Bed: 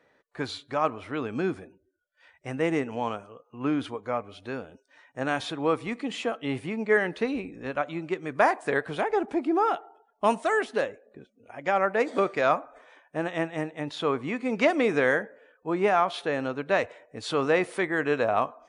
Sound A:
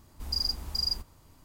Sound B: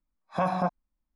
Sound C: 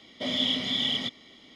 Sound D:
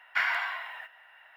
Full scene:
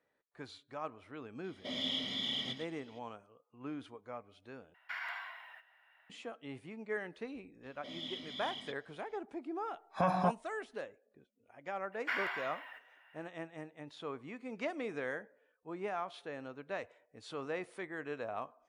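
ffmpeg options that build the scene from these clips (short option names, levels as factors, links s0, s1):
-filter_complex "[3:a]asplit=2[s0][s1];[4:a]asplit=2[s2][s3];[0:a]volume=0.158[s4];[s0]aecho=1:1:114:0.398[s5];[s2]alimiter=limit=0.106:level=0:latency=1:release=70[s6];[s3]bandreject=f=3900:w=21[s7];[s4]asplit=2[s8][s9];[s8]atrim=end=4.744[s10];[s6]atrim=end=1.36,asetpts=PTS-STARTPTS,volume=0.266[s11];[s9]atrim=start=6.096[s12];[s5]atrim=end=1.55,asetpts=PTS-STARTPTS,volume=0.316,afade=t=in:d=0.004:c=hsin,afade=t=out:st=1.546:d=0.004:c=hsin,adelay=1440[s13];[s1]atrim=end=1.55,asetpts=PTS-STARTPTS,volume=0.133,afade=t=in:d=0.004:c=hsin,afade=t=out:st=1.546:d=0.004:c=hsin,adelay=7630[s14];[2:a]atrim=end=1.15,asetpts=PTS-STARTPTS,volume=0.631,afade=t=in:d=0.004:c=hsin,afade=t=out:st=1.146:d=0.004:c=hsin,adelay=424242S[s15];[s7]atrim=end=1.36,asetpts=PTS-STARTPTS,volume=0.376,afade=t=in:d=0.004:c=hsin,afade=t=out:st=1.356:d=0.004:c=hsin,adelay=11920[s16];[s10][s11]acrossfade=d=0.004:c1=hsin:c2=hsin[s17];[s17][s12]acrossfade=d=0.004:c1=hsin:c2=hsin[s18];[s18][s13][s14][s15][s16]amix=inputs=5:normalize=0"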